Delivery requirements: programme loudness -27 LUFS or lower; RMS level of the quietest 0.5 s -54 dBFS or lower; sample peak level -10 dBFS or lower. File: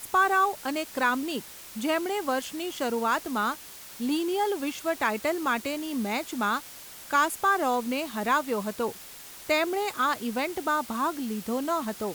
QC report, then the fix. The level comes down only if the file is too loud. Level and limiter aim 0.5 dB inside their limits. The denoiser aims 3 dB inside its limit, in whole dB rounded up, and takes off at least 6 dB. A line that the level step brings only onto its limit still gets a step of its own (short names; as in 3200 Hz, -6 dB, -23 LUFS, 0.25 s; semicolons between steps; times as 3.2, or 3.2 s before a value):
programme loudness -28.0 LUFS: OK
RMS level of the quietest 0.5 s -45 dBFS: fail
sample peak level -11.5 dBFS: OK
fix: denoiser 12 dB, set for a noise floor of -45 dBFS